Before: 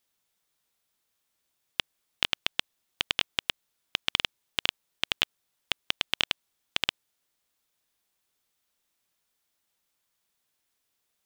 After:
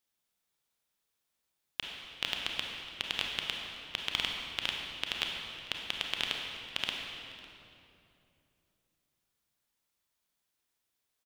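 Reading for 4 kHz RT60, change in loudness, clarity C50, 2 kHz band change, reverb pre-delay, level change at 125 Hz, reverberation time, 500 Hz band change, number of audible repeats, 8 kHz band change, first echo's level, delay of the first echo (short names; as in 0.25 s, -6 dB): 2.0 s, -5.0 dB, 1.5 dB, -4.5 dB, 28 ms, -3.0 dB, 2.8 s, -4.0 dB, 1, -5.0 dB, -20.0 dB, 0.552 s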